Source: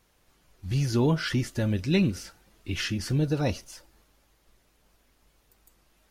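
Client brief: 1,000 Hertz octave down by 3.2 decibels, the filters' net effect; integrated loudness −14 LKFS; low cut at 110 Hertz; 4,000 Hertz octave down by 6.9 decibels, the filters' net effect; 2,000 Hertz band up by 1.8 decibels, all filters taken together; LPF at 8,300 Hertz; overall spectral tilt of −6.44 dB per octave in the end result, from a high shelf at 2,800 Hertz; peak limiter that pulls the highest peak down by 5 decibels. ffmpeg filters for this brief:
ffmpeg -i in.wav -af "highpass=110,lowpass=8300,equalizer=frequency=1000:width_type=o:gain=-5.5,equalizer=frequency=2000:width_type=o:gain=8.5,highshelf=frequency=2800:gain=-5.5,equalizer=frequency=4000:width_type=o:gain=-8,volume=15.5dB,alimiter=limit=-3dB:level=0:latency=1" out.wav

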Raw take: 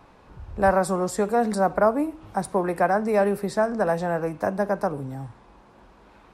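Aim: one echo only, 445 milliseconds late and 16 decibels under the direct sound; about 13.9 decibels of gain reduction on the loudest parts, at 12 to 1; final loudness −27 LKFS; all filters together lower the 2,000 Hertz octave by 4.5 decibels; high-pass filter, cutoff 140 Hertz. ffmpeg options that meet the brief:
ffmpeg -i in.wav -af "highpass=140,equalizer=frequency=2000:width_type=o:gain=-6.5,acompressor=threshold=-30dB:ratio=12,aecho=1:1:445:0.158,volume=8.5dB" out.wav

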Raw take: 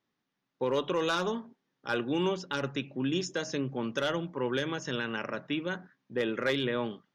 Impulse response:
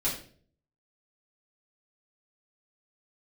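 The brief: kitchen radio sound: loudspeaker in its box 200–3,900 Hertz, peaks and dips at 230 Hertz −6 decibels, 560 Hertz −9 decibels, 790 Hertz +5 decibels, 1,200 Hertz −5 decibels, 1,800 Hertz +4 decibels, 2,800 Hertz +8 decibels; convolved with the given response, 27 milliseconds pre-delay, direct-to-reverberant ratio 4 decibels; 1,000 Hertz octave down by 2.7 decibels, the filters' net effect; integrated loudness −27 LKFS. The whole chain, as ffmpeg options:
-filter_complex "[0:a]equalizer=frequency=1000:width_type=o:gain=-3.5,asplit=2[link_01][link_02];[1:a]atrim=start_sample=2205,adelay=27[link_03];[link_02][link_03]afir=irnorm=-1:irlink=0,volume=-11dB[link_04];[link_01][link_04]amix=inputs=2:normalize=0,highpass=200,equalizer=frequency=230:width_type=q:width=4:gain=-6,equalizer=frequency=560:width_type=q:width=4:gain=-9,equalizer=frequency=790:width_type=q:width=4:gain=5,equalizer=frequency=1200:width_type=q:width=4:gain=-5,equalizer=frequency=1800:width_type=q:width=4:gain=4,equalizer=frequency=2800:width_type=q:width=4:gain=8,lowpass=frequency=3900:width=0.5412,lowpass=frequency=3900:width=1.3066,volume=5dB"

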